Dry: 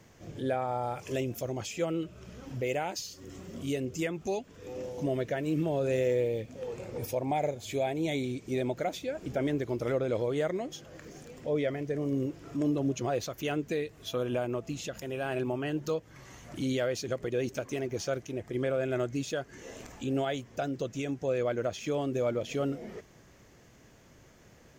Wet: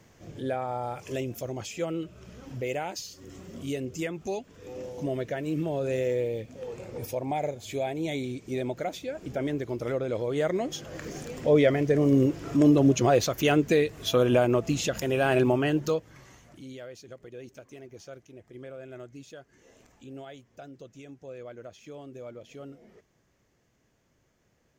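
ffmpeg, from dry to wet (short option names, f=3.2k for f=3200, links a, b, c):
-af "volume=9.5dB,afade=t=in:st=10.24:d=0.81:silence=0.334965,afade=t=out:st=15.45:d=0.76:silence=0.298538,afade=t=out:st=16.21:d=0.4:silence=0.266073"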